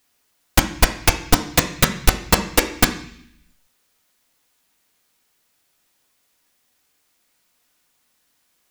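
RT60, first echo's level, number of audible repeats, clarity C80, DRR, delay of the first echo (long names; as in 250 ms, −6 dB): 0.65 s, no echo audible, no echo audible, 14.0 dB, 4.0 dB, no echo audible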